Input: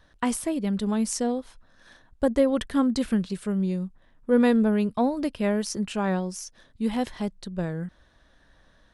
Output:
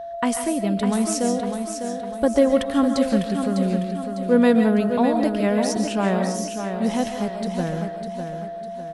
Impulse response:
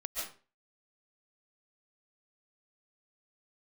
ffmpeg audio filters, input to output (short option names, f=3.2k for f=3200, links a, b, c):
-filter_complex "[0:a]aeval=exprs='val(0)+0.02*sin(2*PI*680*n/s)':c=same,highpass=f=59:p=1,aecho=1:1:602|1204|1806|2408|3010:0.422|0.177|0.0744|0.0312|0.0131,asplit=2[a][b];[1:a]atrim=start_sample=2205[c];[b][c]afir=irnorm=-1:irlink=0,volume=-3.5dB[d];[a][d]amix=inputs=2:normalize=0"